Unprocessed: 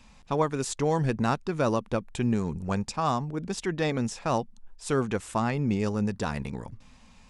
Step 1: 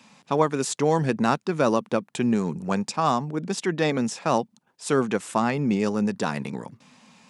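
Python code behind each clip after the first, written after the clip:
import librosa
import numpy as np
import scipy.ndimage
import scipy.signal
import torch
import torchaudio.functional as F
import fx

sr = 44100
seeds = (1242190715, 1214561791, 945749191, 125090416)

y = scipy.signal.sosfilt(scipy.signal.butter(4, 150.0, 'highpass', fs=sr, output='sos'), x)
y = F.gain(torch.from_numpy(y), 4.5).numpy()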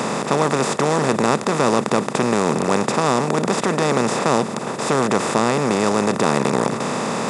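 y = fx.bin_compress(x, sr, power=0.2)
y = F.gain(torch.from_numpy(y), -3.0).numpy()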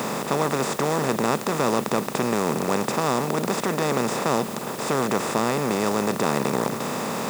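y = fx.quant_dither(x, sr, seeds[0], bits=6, dither='triangular')
y = F.gain(torch.from_numpy(y), -5.0).numpy()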